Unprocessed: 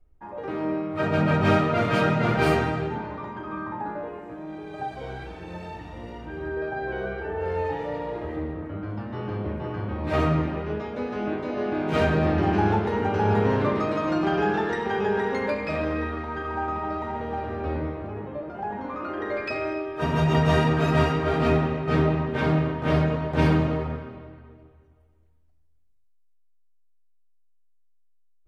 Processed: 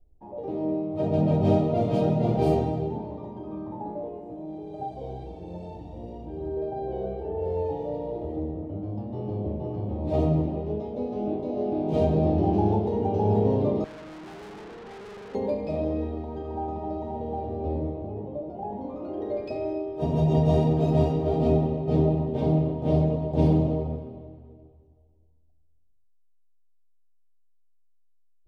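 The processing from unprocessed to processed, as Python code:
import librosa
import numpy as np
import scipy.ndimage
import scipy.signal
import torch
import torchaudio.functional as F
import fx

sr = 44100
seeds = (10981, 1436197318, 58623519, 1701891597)

y = fx.curve_eq(x, sr, hz=(750.0, 1500.0, 3400.0), db=(0, -29, -10))
y = fx.tube_stage(y, sr, drive_db=41.0, bias=0.55, at=(13.84, 15.35))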